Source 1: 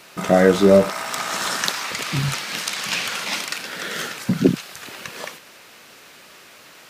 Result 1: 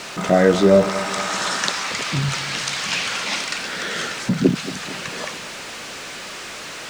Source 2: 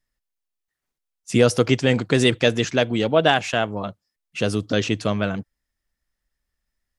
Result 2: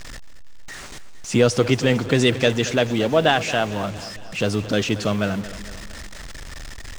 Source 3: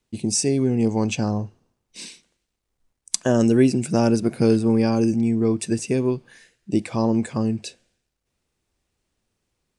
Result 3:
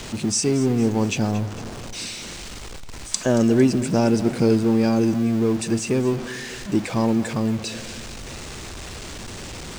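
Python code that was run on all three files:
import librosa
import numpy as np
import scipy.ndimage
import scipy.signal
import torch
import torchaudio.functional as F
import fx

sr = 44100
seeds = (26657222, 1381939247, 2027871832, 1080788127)

y = x + 0.5 * 10.0 ** (-27.5 / 20.0) * np.sign(x)
y = scipy.signal.sosfilt(scipy.signal.butter(4, 8500.0, 'lowpass', fs=sr, output='sos'), y)
y = fx.quant_dither(y, sr, seeds[0], bits=8, dither='none')
y = fx.echo_feedback(y, sr, ms=227, feedback_pct=54, wet_db=-15.5)
y = F.gain(torch.from_numpy(y), -1.0).numpy()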